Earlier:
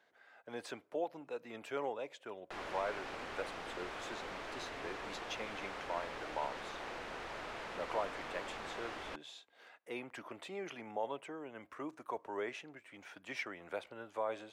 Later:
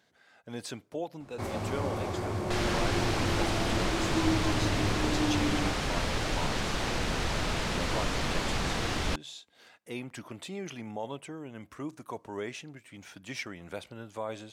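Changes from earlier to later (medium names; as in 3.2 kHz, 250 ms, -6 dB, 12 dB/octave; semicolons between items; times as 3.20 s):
first sound: unmuted; second sound +9.5 dB; master: remove three-band isolator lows -17 dB, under 340 Hz, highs -12 dB, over 2.7 kHz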